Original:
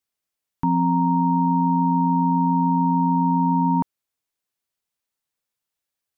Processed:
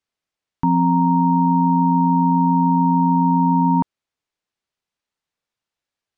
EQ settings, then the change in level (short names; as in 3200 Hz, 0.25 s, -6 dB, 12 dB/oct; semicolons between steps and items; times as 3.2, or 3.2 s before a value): air absorption 87 m; +3.5 dB